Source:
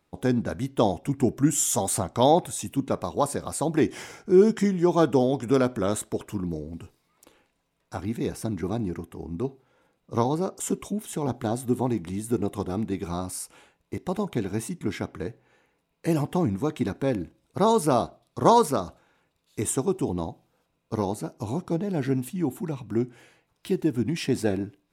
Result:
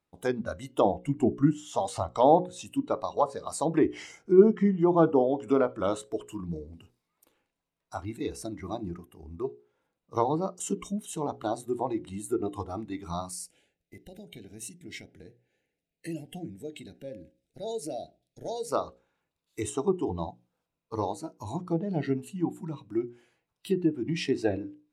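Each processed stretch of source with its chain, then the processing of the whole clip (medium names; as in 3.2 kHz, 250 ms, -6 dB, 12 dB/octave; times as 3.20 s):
13.33–18.72 s: compression 2:1, threshold -33 dBFS + Butterworth band-stop 1.1 kHz, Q 1.1
whole clip: spectral noise reduction 12 dB; low-pass that closes with the level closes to 1.5 kHz, closed at -19 dBFS; hum notches 60/120/180/240/300/360/420/480/540 Hz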